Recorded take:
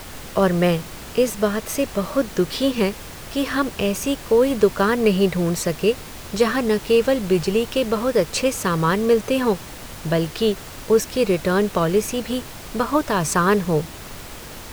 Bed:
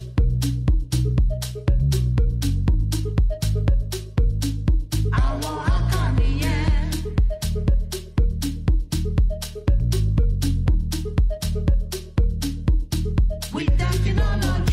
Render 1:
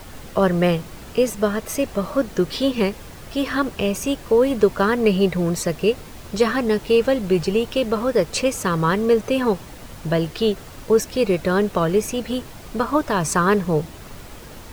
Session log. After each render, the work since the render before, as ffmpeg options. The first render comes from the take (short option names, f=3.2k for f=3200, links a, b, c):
-af "afftdn=nr=6:nf=-37"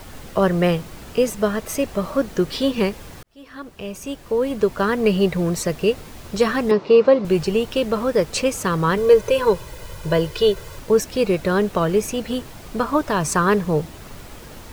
-filter_complex "[0:a]asettb=1/sr,asplit=3[a][b][c];[a]atrim=end=6.714[d];[b]atrim=start=6.71:end=7.25,asetpts=PTS-STARTPTS,afade=t=in:d=0.004:c=qsin,afade=t=out:st=0.536:d=0.004:c=qsin,highpass=170,equalizer=f=180:t=q:w=4:g=5,equalizer=f=380:t=q:w=4:g=6,equalizer=f=560:t=q:w=4:g=6,equalizer=f=1.1k:t=q:w=4:g=9,equalizer=f=1.7k:t=q:w=4:g=-4,equalizer=f=3.2k:t=q:w=4:g=-7,lowpass=f=4.8k:w=0.5412,lowpass=f=4.8k:w=1.3066[e];[c]atrim=start=7.246[f];[d][e]acrossfade=d=0.004:c1=hsin:c2=qsin[g];[g][f]acrossfade=d=0.004:c1=qsin:c2=hsin,asettb=1/sr,asplit=3[h][i][j];[h]atrim=end=8.974[k];[i]atrim=start=8.97:end=10.79,asetpts=PTS-STARTPTS,afade=t=in:d=0.004:c=qsin,afade=t=out:st=1.816:d=0.004:c=qsin,aecho=1:1:2:0.77,atrim=end_sample=80262[l];[j]atrim=start=10.786[m];[k][l]acrossfade=d=0.004:c1=hsin:c2=qsin[n];[n][m]acrossfade=d=0.004:c1=qsin:c2=hsin,asplit=2[o][p];[o]atrim=end=3.23,asetpts=PTS-STARTPTS,afade=t=out:st=3.226:d=0.004:c=hsin[q];[p]atrim=start=3.23,asetpts=PTS-STARTPTS,afade=t=in:d=1.93[r];[q][r]concat=n=2:v=0:a=1"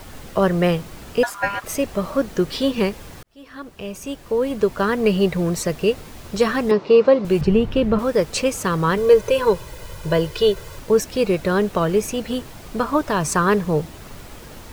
-filter_complex "[0:a]asettb=1/sr,asplit=3[a][b][c];[a]atrim=end=1.234[d];[b]atrim=start=1.23:end=1.64,asetpts=PTS-STARTPTS,afade=t=in:d=0.004:c=qsin,afade=t=out:st=0.406:d=0.004:c=qsin,aeval=exprs='val(0)*sin(2*PI*1200*n/s)':c=same[e];[c]atrim=start=1.636[f];[d][e]acrossfade=d=0.004:c1=hsin:c2=qsin[g];[g][f]acrossfade=d=0.004:c1=qsin:c2=hsin,asettb=1/sr,asplit=3[h][i][j];[h]atrim=end=7.414[k];[i]atrim=start=7.41:end=7.99,asetpts=PTS-STARTPTS,afade=t=in:d=0.004:c=qsin,afade=t=out:st=0.576:d=0.004:c=qsin,bass=f=250:g=11,treble=f=4k:g=-13[l];[j]atrim=start=7.986[m];[k][l]acrossfade=d=0.004:c1=hsin:c2=qsin[n];[n][m]acrossfade=d=0.004:c1=qsin:c2=hsin"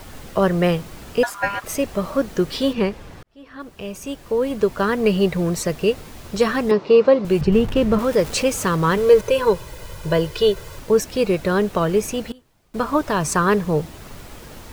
-filter_complex "[0:a]asettb=1/sr,asplit=3[a][b][c];[a]atrim=end=2.734[d];[b]atrim=start=2.73:end=3.6,asetpts=PTS-STARTPTS,afade=t=in:d=0.004:c=qsin,afade=t=out:st=0.866:d=0.004:c=qsin,lowpass=f=2.9k:p=1[e];[c]atrim=start=3.596[f];[d][e]acrossfade=d=0.004:c1=hsin:c2=qsin[g];[g][f]acrossfade=d=0.004:c1=qsin:c2=hsin,asettb=1/sr,asplit=3[h][i][j];[h]atrim=end=7.524[k];[i]atrim=start=7.52:end=9.21,asetpts=PTS-STARTPTS,afade=t=in:d=0.004:c=qsin,afade=t=out:st=1.686:d=0.004:c=qsin,aeval=exprs='val(0)+0.5*0.0316*sgn(val(0))':c=same[l];[j]atrim=start=9.206[m];[k][l]acrossfade=d=0.004:c1=hsin:c2=qsin[n];[n][m]acrossfade=d=0.004:c1=qsin:c2=hsin,asplit=3[o][p][q];[o]atrim=end=12.32,asetpts=PTS-STARTPTS,afade=t=out:st=12.12:d=0.2:c=log:silence=0.0668344[r];[p]atrim=start=12.32:end=12.74,asetpts=PTS-STARTPTS,volume=-23.5dB[s];[q]atrim=start=12.74,asetpts=PTS-STARTPTS,afade=t=in:d=0.2:c=log:silence=0.0668344[t];[r][s][t]concat=n=3:v=0:a=1"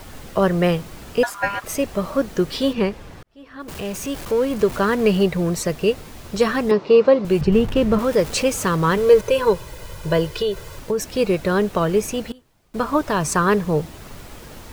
-filter_complex "[0:a]asettb=1/sr,asplit=3[a][b][c];[a]atrim=end=3.684[d];[b]atrim=start=3.68:end=5.23,asetpts=PTS-STARTPTS,afade=t=in:d=0.004:c=qsin,afade=t=out:st=1.546:d=0.004:c=qsin,aeval=exprs='val(0)+0.5*0.0335*sgn(val(0))':c=same[e];[c]atrim=start=5.226[f];[d][e]acrossfade=d=0.004:c1=hsin:c2=qsin[g];[g][f]acrossfade=d=0.004:c1=qsin:c2=hsin,asettb=1/sr,asplit=3[h][i][j];[h]atrim=end=10.354[k];[i]atrim=start=10.35:end=11.01,asetpts=PTS-STARTPTS,afade=t=in:d=0.004:c=qsin,afade=t=out:st=0.656:d=0.004:c=qsin,acompressor=threshold=-17dB:ratio=6:attack=3.2:release=140:knee=1:detection=peak[l];[j]atrim=start=11.006[m];[k][l]acrossfade=d=0.004:c1=hsin:c2=qsin[n];[n][m]acrossfade=d=0.004:c1=qsin:c2=hsin"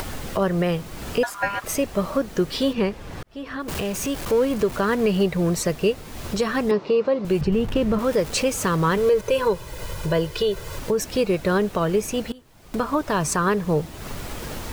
-af "acompressor=mode=upward:threshold=-23dB:ratio=2.5,alimiter=limit=-11.5dB:level=0:latency=1:release=205"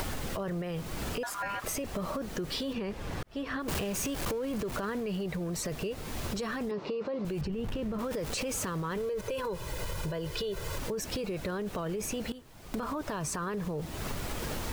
-af "alimiter=limit=-22dB:level=0:latency=1:release=16,acompressor=threshold=-31dB:ratio=6"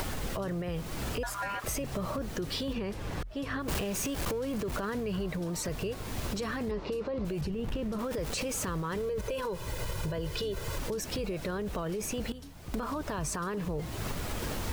-filter_complex "[1:a]volume=-23.5dB[a];[0:a][a]amix=inputs=2:normalize=0"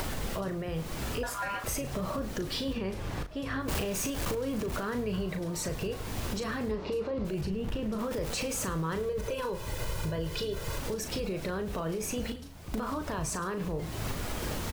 -filter_complex "[0:a]asplit=2[a][b];[b]adelay=37,volume=-8dB[c];[a][c]amix=inputs=2:normalize=0,asplit=2[d][e];[e]adelay=105,volume=-19dB,highshelf=f=4k:g=-2.36[f];[d][f]amix=inputs=2:normalize=0"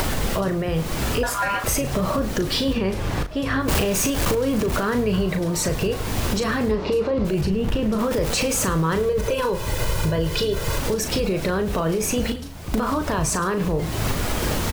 -af "volume=11dB"